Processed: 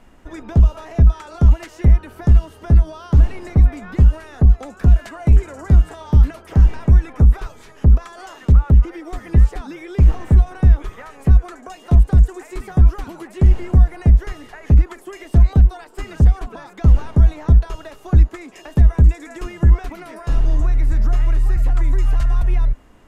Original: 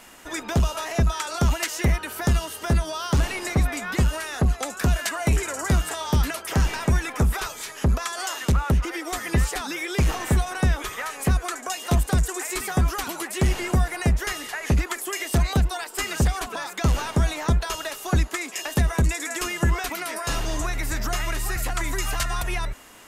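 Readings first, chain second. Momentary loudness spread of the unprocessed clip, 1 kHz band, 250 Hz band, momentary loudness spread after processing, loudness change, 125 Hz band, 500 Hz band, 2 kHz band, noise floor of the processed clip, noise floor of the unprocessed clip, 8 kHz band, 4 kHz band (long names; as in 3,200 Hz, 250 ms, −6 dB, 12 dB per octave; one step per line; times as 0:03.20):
6 LU, −5.0 dB, +3.5 dB, 13 LU, +8.0 dB, +9.0 dB, −1.5 dB, −9.0 dB, −45 dBFS, −39 dBFS, below −15 dB, below −10 dB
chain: spectral tilt −4 dB per octave
level −5.5 dB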